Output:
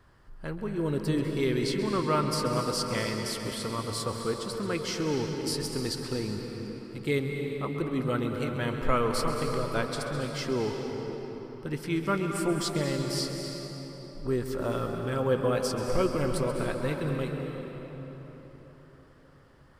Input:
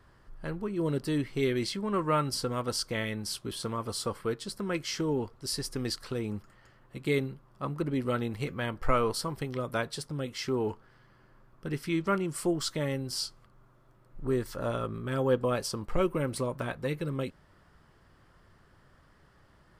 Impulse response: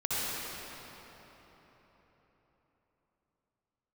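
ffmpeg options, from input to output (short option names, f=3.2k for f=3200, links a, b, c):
-filter_complex "[0:a]asplit=2[a][b];[1:a]atrim=start_sample=2205,adelay=133[c];[b][c]afir=irnorm=-1:irlink=0,volume=-12dB[d];[a][d]amix=inputs=2:normalize=0"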